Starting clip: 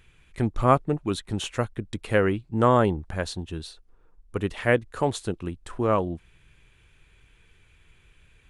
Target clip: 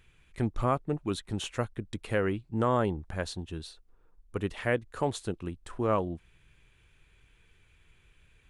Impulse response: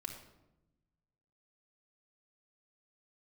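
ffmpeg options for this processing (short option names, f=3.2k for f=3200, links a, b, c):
-af "alimiter=limit=-11dB:level=0:latency=1:release=251,volume=-4.5dB"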